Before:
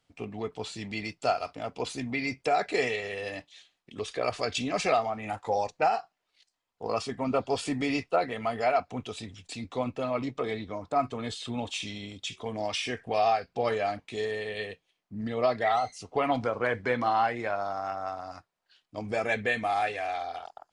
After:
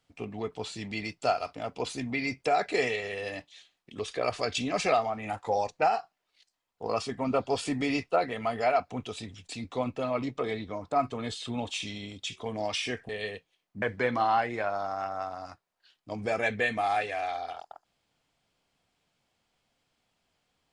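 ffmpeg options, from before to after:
ffmpeg -i in.wav -filter_complex "[0:a]asplit=3[link_01][link_02][link_03];[link_01]atrim=end=13.092[link_04];[link_02]atrim=start=14.448:end=15.182[link_05];[link_03]atrim=start=16.678[link_06];[link_04][link_05]acrossfade=duration=0.004:curve1=hsin:curve2=hsin[link_07];[link_07][link_06]acrossfade=duration=0.004:curve1=hsin:curve2=hsin" out.wav

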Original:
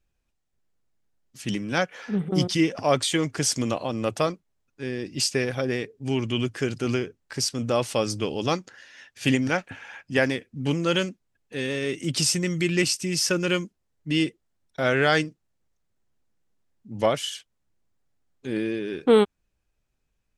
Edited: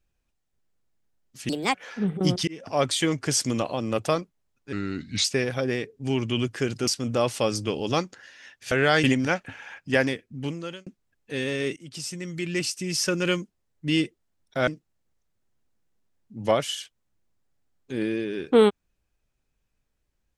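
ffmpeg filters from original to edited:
ffmpeg -i in.wav -filter_complex "[0:a]asplit=12[link_01][link_02][link_03][link_04][link_05][link_06][link_07][link_08][link_09][link_10][link_11][link_12];[link_01]atrim=end=1.494[link_13];[link_02]atrim=start=1.49:end=1.86,asetpts=PTS-STARTPTS,asetrate=63945,aresample=44100,atrim=end_sample=11253,asetpts=PTS-STARTPTS[link_14];[link_03]atrim=start=1.856:end=2.59,asetpts=PTS-STARTPTS,afade=type=out:start_time=0.73:duration=0.004:curve=hsin[link_15];[link_04]atrim=start=2.59:end=4.844,asetpts=PTS-STARTPTS,afade=type=in:duration=0.57:curve=qsin[link_16];[link_05]atrim=start=4.84:end=5.25,asetpts=PTS-STARTPTS,asetrate=34839,aresample=44100,atrim=end_sample=22887,asetpts=PTS-STARTPTS[link_17];[link_06]atrim=start=5.246:end=6.882[link_18];[link_07]atrim=start=7.418:end=9.262[link_19];[link_08]atrim=start=14.898:end=15.222[link_20];[link_09]atrim=start=9.258:end=11.09,asetpts=PTS-STARTPTS,afade=type=out:start_time=1.062:duration=0.77[link_21];[link_10]atrim=start=11.09:end=11.99,asetpts=PTS-STARTPTS,afade=type=in:duration=0.004:curve=hsin,afade=type=out:start_time=0.896:duration=0.004:curve=hsin:silence=0.1[link_22];[link_11]atrim=start=11.99:end=14.902,asetpts=PTS-STARTPTS,afade=type=in:duration=1.58:silence=0.1[link_23];[link_12]atrim=start=15.218[link_24];[link_13][link_14]acrossfade=duration=0.004:curve1=hsin:curve2=hsin[link_25];[link_15][link_16]concat=n=2:v=0:a=1[link_26];[link_25][link_26]acrossfade=duration=0.004:curve1=hsin:curve2=hsin[link_27];[link_27][link_17]acrossfade=duration=0.004:curve1=hsin:curve2=hsin[link_28];[link_28][link_18]acrossfade=duration=0.004:curve1=hsin:curve2=hsin[link_29];[link_29][link_19]acrossfade=duration=0.004:curve1=hsin:curve2=hsin[link_30];[link_30][link_20]acrossfade=duration=0.004:curve1=hsin:curve2=hsin[link_31];[link_21][link_22][link_23]concat=n=3:v=0:a=1[link_32];[link_31][link_32]acrossfade=duration=0.004:curve1=hsin:curve2=hsin[link_33];[link_33][link_24]acrossfade=duration=0.004:curve1=hsin:curve2=hsin" out.wav

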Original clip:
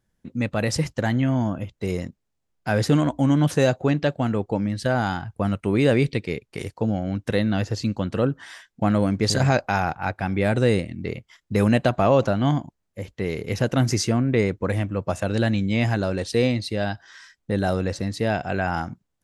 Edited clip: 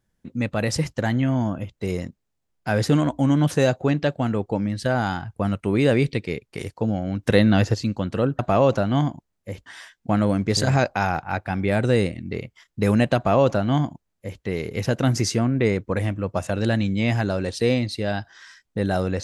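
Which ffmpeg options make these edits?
ffmpeg -i in.wav -filter_complex "[0:a]asplit=5[link_01][link_02][link_03][link_04][link_05];[link_01]atrim=end=7.232[link_06];[link_02]atrim=start=7.228:end=7.742,asetpts=PTS-STARTPTS,volume=5.5dB[link_07];[link_03]atrim=start=7.738:end=8.392[link_08];[link_04]atrim=start=11.888:end=13.162[link_09];[link_05]atrim=start=8.388[link_10];[link_06][link_07]acrossfade=duration=0.004:curve1=hsin:curve2=hsin[link_11];[link_11][link_08]acrossfade=duration=0.004:curve1=hsin:curve2=hsin[link_12];[link_12][link_09]acrossfade=duration=0.004:curve1=hsin:curve2=hsin[link_13];[link_13][link_10]acrossfade=duration=0.004:curve1=hsin:curve2=hsin" out.wav

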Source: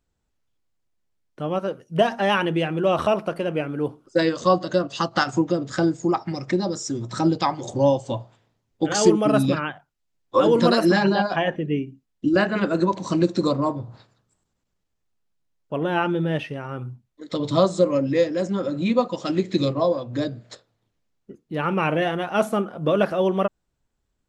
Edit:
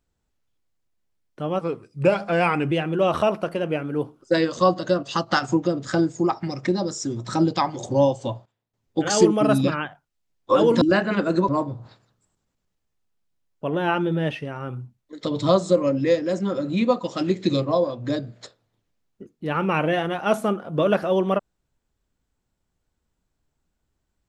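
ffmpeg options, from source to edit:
ffmpeg -i in.wav -filter_complex "[0:a]asplit=7[link_01][link_02][link_03][link_04][link_05][link_06][link_07];[link_01]atrim=end=1.614[link_08];[link_02]atrim=start=1.61:end=2.56,asetpts=PTS-STARTPTS,asetrate=37926,aresample=44100,atrim=end_sample=48715,asetpts=PTS-STARTPTS[link_09];[link_03]atrim=start=2.556:end=8.3,asetpts=PTS-STARTPTS,afade=type=out:start_time=5.384:duration=0.36:curve=log:silence=0.133352[link_10];[link_04]atrim=start=8.3:end=8.58,asetpts=PTS-STARTPTS,volume=-17.5dB[link_11];[link_05]atrim=start=8.58:end=10.662,asetpts=PTS-STARTPTS,afade=type=in:duration=0.36:curve=log:silence=0.133352[link_12];[link_06]atrim=start=12.258:end=12.932[link_13];[link_07]atrim=start=13.568[link_14];[link_08][link_09]acrossfade=duration=0.004:curve1=hsin:curve2=hsin[link_15];[link_10][link_11][link_12]concat=n=3:v=0:a=1[link_16];[link_15][link_16]acrossfade=duration=0.004:curve1=hsin:curve2=hsin[link_17];[link_17][link_13]acrossfade=duration=0.004:curve1=hsin:curve2=hsin[link_18];[link_18][link_14]acrossfade=duration=0.004:curve1=hsin:curve2=hsin" out.wav

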